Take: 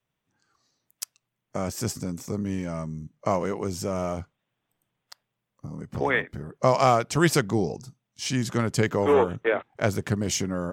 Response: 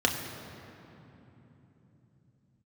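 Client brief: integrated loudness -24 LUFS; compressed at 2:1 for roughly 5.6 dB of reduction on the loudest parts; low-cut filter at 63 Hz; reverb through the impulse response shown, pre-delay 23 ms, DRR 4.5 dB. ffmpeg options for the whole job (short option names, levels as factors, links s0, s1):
-filter_complex "[0:a]highpass=63,acompressor=threshold=0.0562:ratio=2,asplit=2[s0][s1];[1:a]atrim=start_sample=2205,adelay=23[s2];[s1][s2]afir=irnorm=-1:irlink=0,volume=0.15[s3];[s0][s3]amix=inputs=2:normalize=0,volume=1.58"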